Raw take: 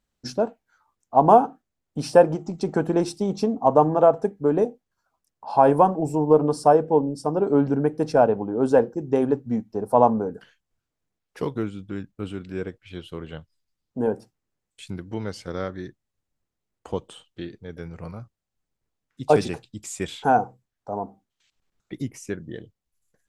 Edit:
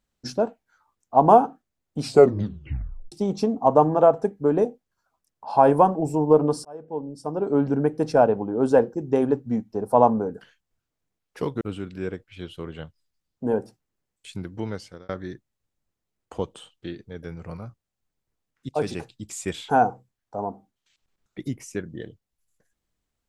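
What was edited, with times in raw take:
2.00 s: tape stop 1.12 s
6.65–7.80 s: fade in
11.61–12.15 s: delete
15.22–15.63 s: fade out
19.23–19.63 s: fade in, from -14 dB

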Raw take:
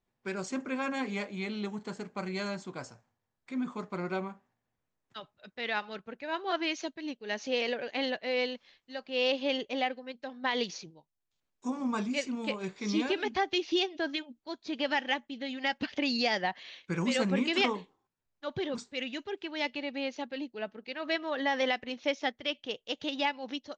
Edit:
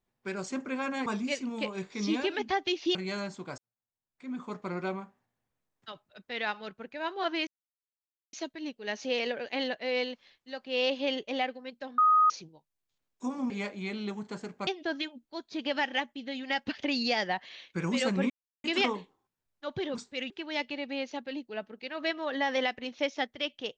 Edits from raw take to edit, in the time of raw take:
1.06–2.23 s: swap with 11.92–13.81 s
2.86–3.81 s: fade in quadratic
6.75 s: insert silence 0.86 s
10.40–10.72 s: bleep 1.25 kHz -18.5 dBFS
17.44 s: insert silence 0.34 s
19.10–19.35 s: delete

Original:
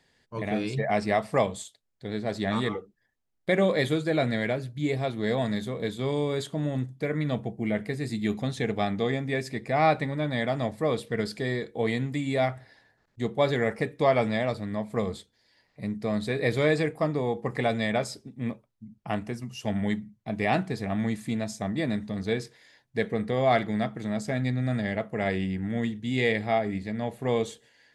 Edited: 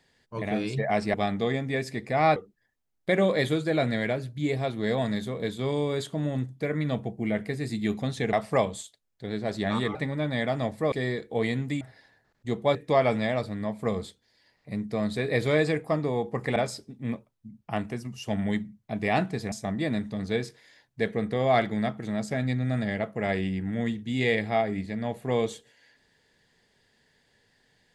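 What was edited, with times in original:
1.14–2.76 s: swap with 8.73–9.95 s
10.92–11.36 s: delete
12.25–12.54 s: delete
13.48–13.86 s: delete
17.67–17.93 s: delete
20.89–21.49 s: delete

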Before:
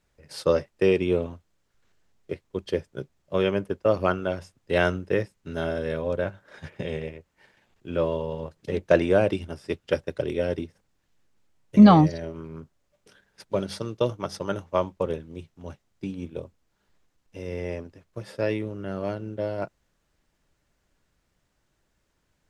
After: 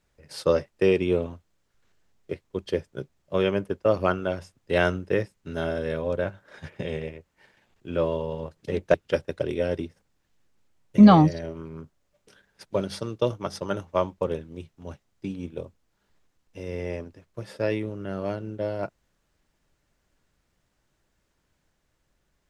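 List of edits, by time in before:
8.94–9.73 s: delete

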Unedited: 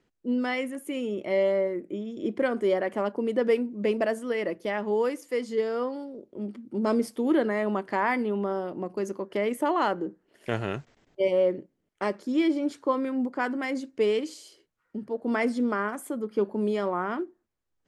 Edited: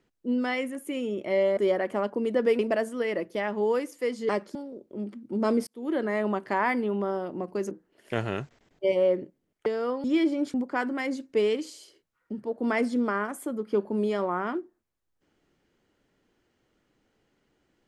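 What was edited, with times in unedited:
1.57–2.59 s: delete
3.61–3.89 s: delete
5.59–5.97 s: swap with 12.02–12.28 s
7.09–7.57 s: fade in
9.13–10.07 s: delete
12.78–13.18 s: delete

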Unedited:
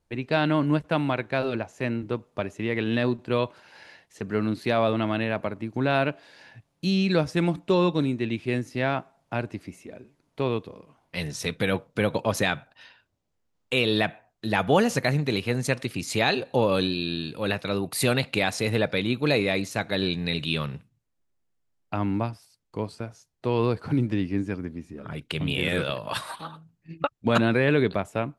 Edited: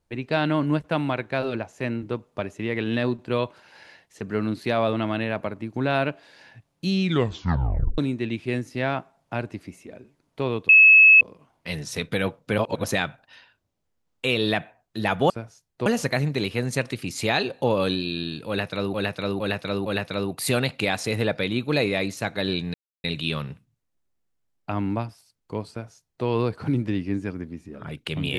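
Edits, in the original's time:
7.01 s: tape stop 0.97 s
10.69 s: add tone 2.59 kHz -8.5 dBFS 0.52 s
12.06–12.32 s: reverse
17.40–17.86 s: loop, 4 plays
20.28 s: insert silence 0.30 s
22.94–23.50 s: copy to 14.78 s

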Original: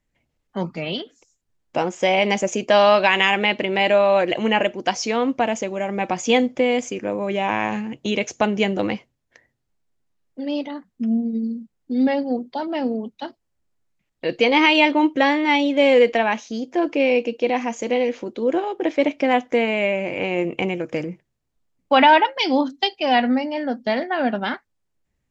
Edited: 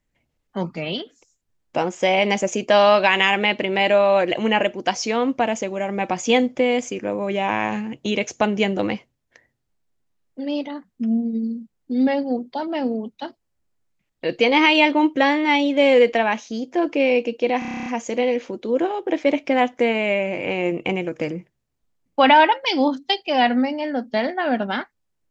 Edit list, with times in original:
17.59 s: stutter 0.03 s, 10 plays

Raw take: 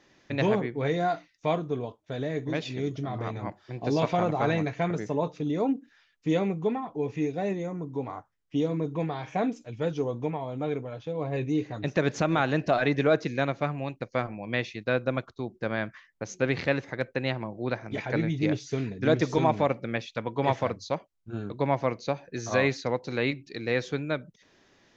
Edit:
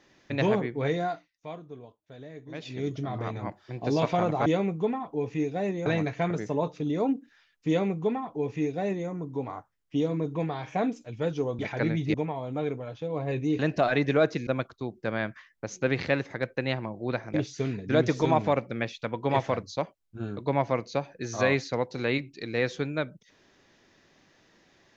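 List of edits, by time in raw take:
0.90–2.89 s: dip -13 dB, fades 0.40 s
6.28–7.68 s: copy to 4.46 s
11.64–12.49 s: delete
13.37–15.05 s: delete
17.92–18.47 s: move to 10.19 s

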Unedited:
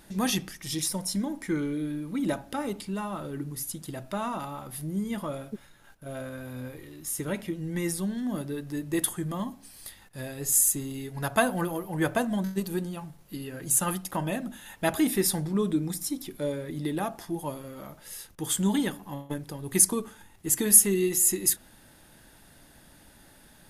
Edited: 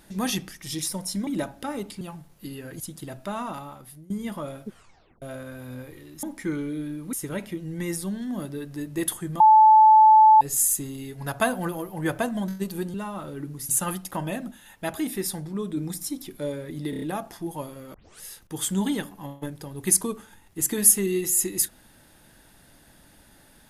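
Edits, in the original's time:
1.27–2.17 s: move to 7.09 s
2.91–3.66 s: swap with 12.90–13.69 s
4.40–4.96 s: fade out, to -20.5 dB
5.54 s: tape stop 0.54 s
9.36–10.37 s: bleep 870 Hz -10 dBFS
14.51–15.77 s: gain -4 dB
16.90 s: stutter 0.03 s, 5 plays
17.82 s: tape start 0.27 s

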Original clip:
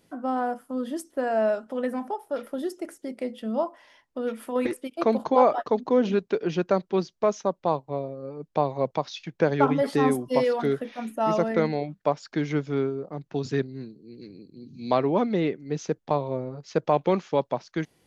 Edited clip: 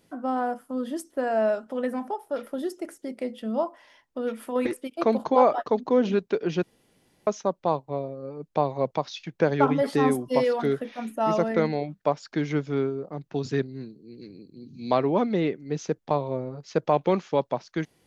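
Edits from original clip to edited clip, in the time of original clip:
6.63–7.27 s: room tone

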